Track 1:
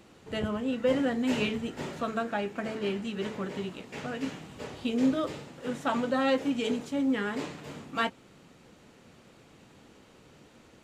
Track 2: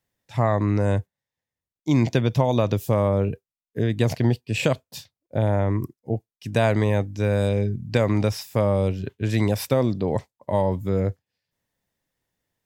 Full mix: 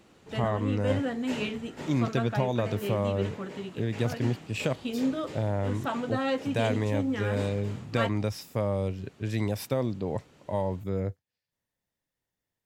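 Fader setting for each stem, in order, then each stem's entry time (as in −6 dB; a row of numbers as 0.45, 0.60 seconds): −2.5, −7.5 decibels; 0.00, 0.00 seconds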